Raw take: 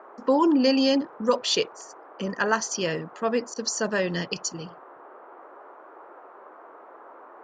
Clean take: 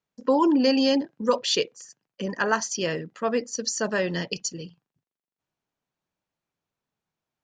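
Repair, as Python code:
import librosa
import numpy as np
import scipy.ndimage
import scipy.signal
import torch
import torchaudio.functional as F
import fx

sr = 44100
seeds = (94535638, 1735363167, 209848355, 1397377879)

y = fx.fix_interpolate(x, sr, at_s=(3.54,), length_ms=19.0)
y = fx.noise_reduce(y, sr, print_start_s=6.13, print_end_s=6.63, reduce_db=30.0)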